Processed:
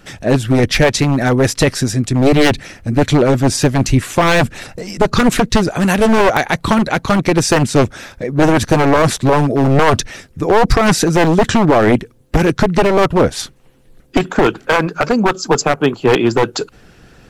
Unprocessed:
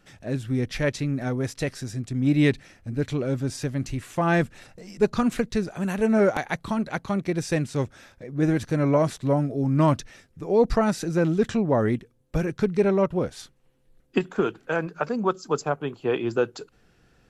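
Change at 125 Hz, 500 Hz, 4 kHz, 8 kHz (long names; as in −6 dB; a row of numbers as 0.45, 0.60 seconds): +10.5, +10.5, +18.5, +18.0 decibels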